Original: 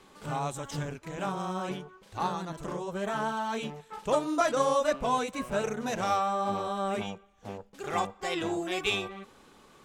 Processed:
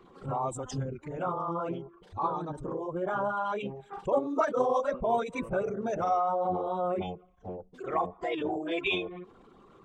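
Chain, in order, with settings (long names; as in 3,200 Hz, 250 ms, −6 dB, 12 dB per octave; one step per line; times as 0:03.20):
spectral envelope exaggerated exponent 2
phase-vocoder pitch shift with formants kept −1.5 semitones
level +1 dB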